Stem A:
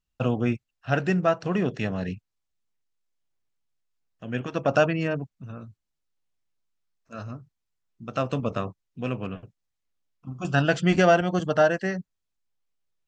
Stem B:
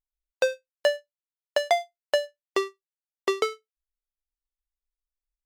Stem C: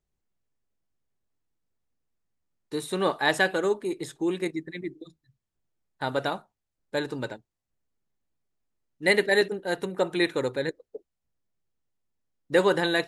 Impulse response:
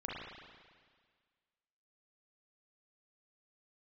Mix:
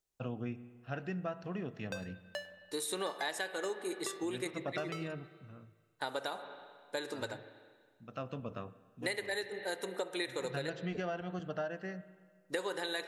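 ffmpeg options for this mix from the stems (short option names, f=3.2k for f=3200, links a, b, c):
-filter_complex "[0:a]lowpass=5.2k,volume=-15dB,asplit=2[a][b];[b]volume=-16dB[c];[1:a]equalizer=f=500:t=o:w=0.97:g=-8,adelay=1500,volume=-15dB,asplit=3[d][e][f];[e]volume=-10dB[g];[f]volume=-18dB[h];[2:a]bass=f=250:g=-14,treble=f=4k:g=8,volume=-5dB,asplit=2[i][j];[j]volume=-11dB[k];[3:a]atrim=start_sample=2205[l];[c][g][k]amix=inputs=3:normalize=0[m];[m][l]afir=irnorm=-1:irlink=0[n];[h]aecho=0:1:102:1[o];[a][d][i][n][o]amix=inputs=5:normalize=0,acompressor=threshold=-33dB:ratio=10"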